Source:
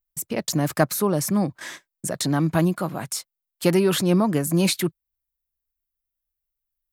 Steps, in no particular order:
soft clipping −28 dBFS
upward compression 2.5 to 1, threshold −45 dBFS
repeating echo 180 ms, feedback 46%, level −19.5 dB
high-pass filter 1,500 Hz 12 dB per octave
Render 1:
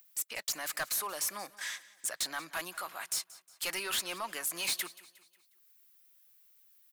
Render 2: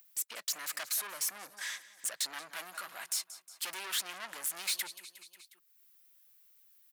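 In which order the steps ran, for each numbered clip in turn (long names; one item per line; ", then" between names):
high-pass filter, then upward compression, then soft clipping, then repeating echo
repeating echo, then soft clipping, then high-pass filter, then upward compression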